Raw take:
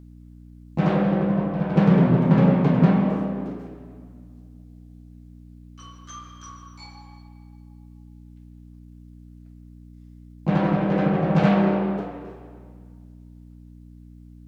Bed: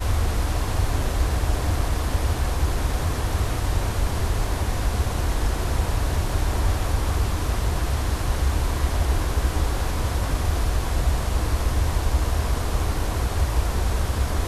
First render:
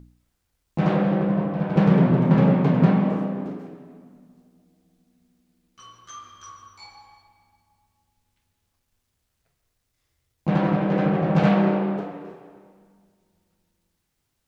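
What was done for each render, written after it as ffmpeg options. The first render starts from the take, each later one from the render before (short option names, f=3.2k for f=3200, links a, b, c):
-af "bandreject=f=60:t=h:w=4,bandreject=f=120:t=h:w=4,bandreject=f=180:t=h:w=4,bandreject=f=240:t=h:w=4,bandreject=f=300:t=h:w=4"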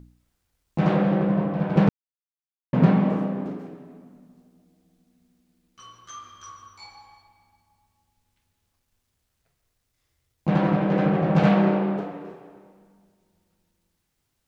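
-filter_complex "[0:a]asplit=3[a][b][c];[a]atrim=end=1.89,asetpts=PTS-STARTPTS,afade=t=out:st=1.886:d=0.004:c=hsin[d];[b]atrim=start=1.89:end=2.73,asetpts=PTS-STARTPTS,volume=0[e];[c]atrim=start=2.73,asetpts=PTS-STARTPTS,afade=t=in:d=0.004:c=hsin[f];[d][e][f]concat=n=3:v=0:a=1"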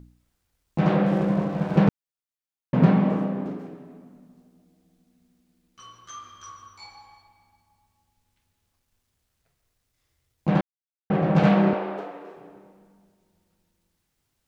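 -filter_complex "[0:a]asettb=1/sr,asplit=3[a][b][c];[a]atrim=end=1.064[d];[b]atrim=start=1.06:end=1.77,asetpts=PTS-STARTPTS,afade=t=in:d=0.004:c=qsin,afade=t=out:st=0.706:d=0.004:c=qsin,aeval=exprs='sgn(val(0))*max(abs(val(0))-0.00944,0)':c=same[e];[c]atrim=start=1.766[f];[d][e]acrossfade=d=0.004:c1=hsin:c2=qsin[g];[g][f]acrossfade=d=0.004:c1=qsin:c2=hsin,asettb=1/sr,asplit=3[h][i][j];[h]atrim=end=11.734[k];[i]atrim=start=11.73:end=12.37,asetpts=PTS-STARTPTS,afade=t=in:d=0.004:c=qsin,afade=t=out:st=0.636:d=0.004:c=qsin,highpass=410[l];[j]atrim=start=12.366[m];[k][l]acrossfade=d=0.004:c1=hsin:c2=qsin[n];[n][m]acrossfade=d=0.004:c1=qsin:c2=hsin,asplit=3[o][p][q];[o]atrim=end=10.61,asetpts=PTS-STARTPTS,afade=t=out:st=10.606:d=0.004:c=hsin[r];[p]atrim=start=10.61:end=11.1,asetpts=PTS-STARTPTS,volume=0[s];[q]atrim=start=11.1,asetpts=PTS-STARTPTS,afade=t=in:d=0.004:c=hsin[t];[r][s][t]concat=n=3:v=0:a=1"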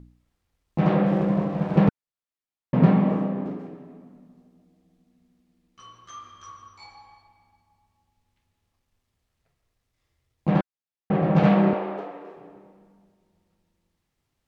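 -af "aemphasis=mode=reproduction:type=cd,bandreject=f=1.5k:w=16"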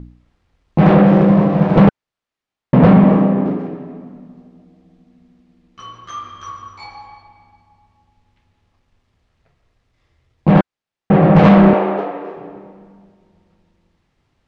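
-af "adynamicsmooth=sensitivity=2:basefreq=4.9k,aeval=exprs='0.668*sin(PI/2*2.82*val(0)/0.668)':c=same"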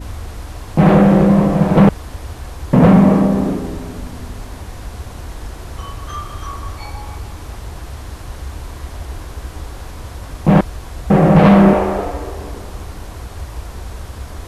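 -filter_complex "[1:a]volume=-6.5dB[a];[0:a][a]amix=inputs=2:normalize=0"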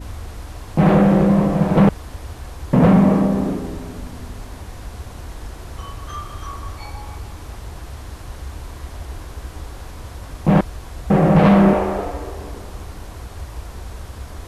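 -af "volume=-3.5dB"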